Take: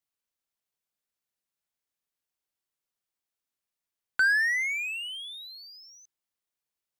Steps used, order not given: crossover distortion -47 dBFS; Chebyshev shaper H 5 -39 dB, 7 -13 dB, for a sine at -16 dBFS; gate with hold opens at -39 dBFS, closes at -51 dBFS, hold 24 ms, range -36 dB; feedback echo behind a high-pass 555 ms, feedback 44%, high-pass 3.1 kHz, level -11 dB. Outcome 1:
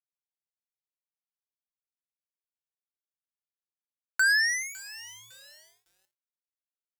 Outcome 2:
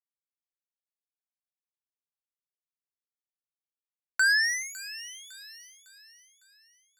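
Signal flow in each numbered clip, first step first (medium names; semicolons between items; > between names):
gate with hold > Chebyshev shaper > feedback echo behind a high-pass > crossover distortion; gate with hold > crossover distortion > Chebyshev shaper > feedback echo behind a high-pass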